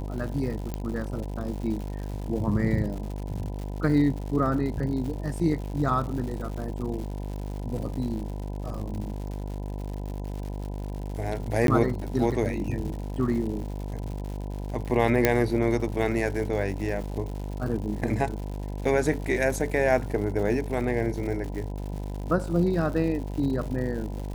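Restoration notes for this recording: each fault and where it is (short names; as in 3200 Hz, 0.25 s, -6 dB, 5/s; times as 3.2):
buzz 50 Hz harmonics 20 -33 dBFS
crackle 170/s -35 dBFS
0.74 pop -18 dBFS
7.78 gap 2 ms
11.67–11.68 gap 12 ms
15.25 pop -5 dBFS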